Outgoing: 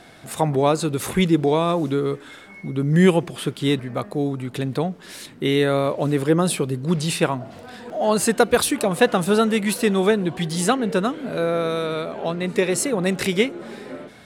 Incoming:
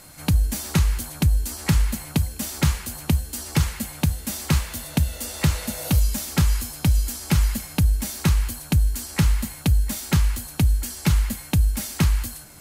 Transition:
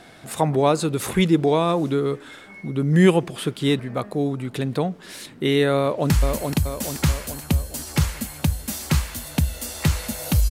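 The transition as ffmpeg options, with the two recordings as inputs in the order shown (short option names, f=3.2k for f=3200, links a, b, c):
-filter_complex "[0:a]apad=whole_dur=10.5,atrim=end=10.5,atrim=end=6.102[a];[1:a]atrim=start=1.688:end=6.09[b];[a][b]acrossfade=d=0.004:c1=hsin:c2=hsin,asplit=2[c][d];[d]afade=t=in:st=5.79:d=0.01,afade=t=out:st=6.1:d=0.01,aecho=0:1:430|860|1290|1720|2150|2580|3010:0.630957|0.347027|0.190865|0.104976|0.0577365|0.0317551|0.0174653[e];[c][e]amix=inputs=2:normalize=0"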